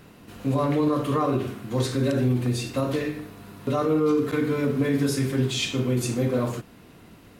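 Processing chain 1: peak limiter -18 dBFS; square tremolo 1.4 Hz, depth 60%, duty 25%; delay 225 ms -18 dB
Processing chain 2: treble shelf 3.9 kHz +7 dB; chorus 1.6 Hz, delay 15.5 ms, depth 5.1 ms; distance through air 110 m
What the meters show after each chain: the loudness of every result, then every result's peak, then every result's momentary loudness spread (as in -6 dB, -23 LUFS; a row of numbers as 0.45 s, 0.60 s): -31.5 LUFS, -28.0 LUFS; -17.5 dBFS, -14.5 dBFS; 9 LU, 8 LU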